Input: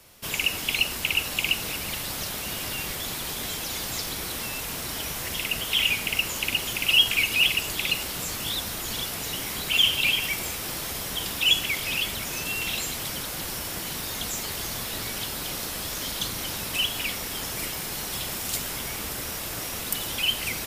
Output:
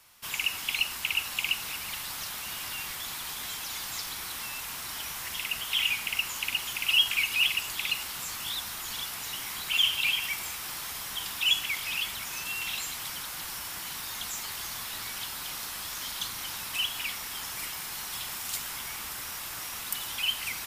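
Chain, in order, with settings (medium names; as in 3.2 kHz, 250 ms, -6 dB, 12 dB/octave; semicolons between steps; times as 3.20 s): resonant low shelf 720 Hz -8.5 dB, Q 1.5; trim -4.5 dB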